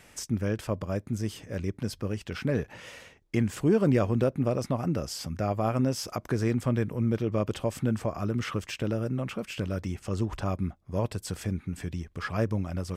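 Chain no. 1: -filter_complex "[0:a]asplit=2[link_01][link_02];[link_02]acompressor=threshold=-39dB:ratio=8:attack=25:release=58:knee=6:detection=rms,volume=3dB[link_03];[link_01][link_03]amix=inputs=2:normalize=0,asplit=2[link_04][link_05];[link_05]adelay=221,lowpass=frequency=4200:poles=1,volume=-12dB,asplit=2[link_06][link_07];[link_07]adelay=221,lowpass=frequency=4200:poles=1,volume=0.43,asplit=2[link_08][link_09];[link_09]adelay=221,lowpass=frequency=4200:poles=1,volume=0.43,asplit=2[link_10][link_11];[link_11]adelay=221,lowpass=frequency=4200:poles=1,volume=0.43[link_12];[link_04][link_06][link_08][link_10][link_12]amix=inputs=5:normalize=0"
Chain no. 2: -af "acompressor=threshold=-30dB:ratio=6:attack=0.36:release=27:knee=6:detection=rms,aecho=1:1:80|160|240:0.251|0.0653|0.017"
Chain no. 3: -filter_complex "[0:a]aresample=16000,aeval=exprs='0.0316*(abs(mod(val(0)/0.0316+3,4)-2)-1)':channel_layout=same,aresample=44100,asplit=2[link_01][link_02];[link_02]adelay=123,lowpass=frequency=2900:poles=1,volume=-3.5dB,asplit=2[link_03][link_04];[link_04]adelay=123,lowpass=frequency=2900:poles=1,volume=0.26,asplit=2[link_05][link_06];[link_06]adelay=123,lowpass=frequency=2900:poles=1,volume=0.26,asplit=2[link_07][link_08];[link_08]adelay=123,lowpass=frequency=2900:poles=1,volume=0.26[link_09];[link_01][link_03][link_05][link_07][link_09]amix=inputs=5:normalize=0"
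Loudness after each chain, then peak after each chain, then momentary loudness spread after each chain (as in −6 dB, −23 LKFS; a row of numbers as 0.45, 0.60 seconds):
−27.0, −36.5, −36.0 LKFS; −11.0, −25.0, −24.5 dBFS; 7, 4, 4 LU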